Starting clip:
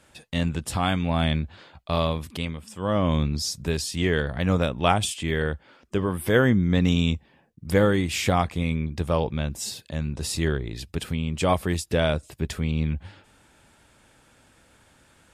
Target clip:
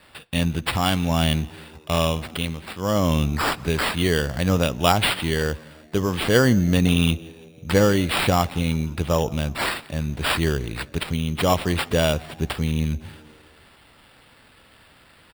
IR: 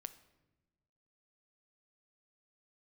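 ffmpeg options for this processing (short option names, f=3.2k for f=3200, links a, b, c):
-filter_complex "[0:a]aexciter=amount=1.3:drive=8.9:freq=3.5k,asplit=5[a][b][c][d][e];[b]adelay=170,afreqshift=76,volume=-24dB[f];[c]adelay=340,afreqshift=152,volume=-28.9dB[g];[d]adelay=510,afreqshift=228,volume=-33.8dB[h];[e]adelay=680,afreqshift=304,volume=-38.6dB[i];[a][f][g][h][i]amix=inputs=5:normalize=0,acrusher=samples=7:mix=1:aa=0.000001,asplit=2[j][k];[1:a]atrim=start_sample=2205,lowpass=6.5k[l];[k][l]afir=irnorm=-1:irlink=0,volume=-5.5dB[m];[j][m]amix=inputs=2:normalize=0"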